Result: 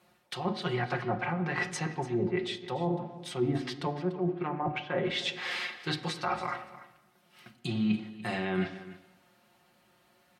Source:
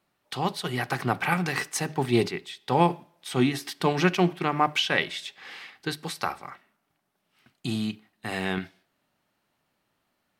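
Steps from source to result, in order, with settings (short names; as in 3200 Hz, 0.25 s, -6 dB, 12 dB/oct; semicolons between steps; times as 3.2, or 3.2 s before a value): treble ducked by the level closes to 660 Hz, closed at -19.5 dBFS; HPF 150 Hz 6 dB/oct; comb 5.6 ms, depth 71%; reverse; compressor 12:1, threshold -36 dBFS, peak gain reduction 22.5 dB; reverse; echo 0.292 s -16 dB; on a send at -8 dB: reverb RT60 1.0 s, pre-delay 3 ms; on the sum: gain +7 dB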